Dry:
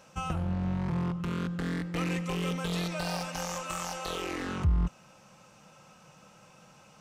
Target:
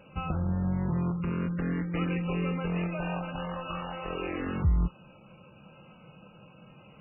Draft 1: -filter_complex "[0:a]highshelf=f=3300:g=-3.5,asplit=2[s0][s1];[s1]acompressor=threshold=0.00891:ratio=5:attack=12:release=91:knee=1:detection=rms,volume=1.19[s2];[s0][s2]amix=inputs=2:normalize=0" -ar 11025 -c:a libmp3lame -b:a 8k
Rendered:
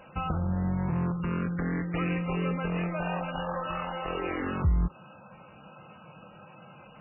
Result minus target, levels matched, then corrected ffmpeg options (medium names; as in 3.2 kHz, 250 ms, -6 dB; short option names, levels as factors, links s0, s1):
1 kHz band +3.0 dB
-filter_complex "[0:a]highshelf=f=3300:g=-3.5,asplit=2[s0][s1];[s1]acompressor=threshold=0.00891:ratio=5:attack=12:release=91:knee=1:detection=rms,asuperstop=centerf=1100:order=4:qfactor=0.76,volume=1.19[s2];[s0][s2]amix=inputs=2:normalize=0" -ar 11025 -c:a libmp3lame -b:a 8k